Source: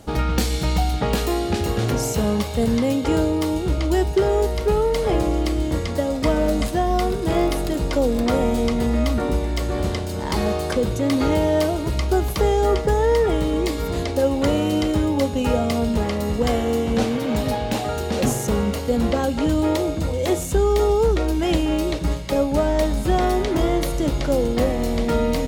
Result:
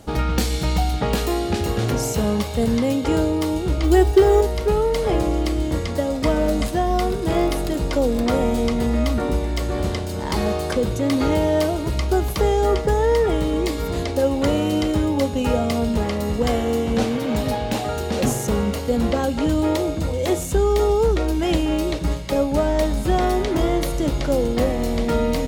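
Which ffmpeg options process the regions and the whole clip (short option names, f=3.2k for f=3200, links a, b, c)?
-filter_complex "[0:a]asettb=1/sr,asplit=3[a][b][c];[a]atrim=end=3.834[d];[b]atrim=start=3.83:end=4.41,asetpts=PTS-STARTPTS,afade=t=in:d=0.004:c=qsin,afade=t=out:st=0.576:d=0.004:c=qsin,acrusher=bits=8:mode=log:mix=0:aa=0.000001,aecho=1:1:2.6:0.87,atrim=end_sample=25578[e];[c]atrim=start=4.406[f];[d][e]acrossfade=d=0.004:c1=hsin:c2=qsin[g];[g][f]acrossfade=d=0.004:c1=qsin:c2=hsin"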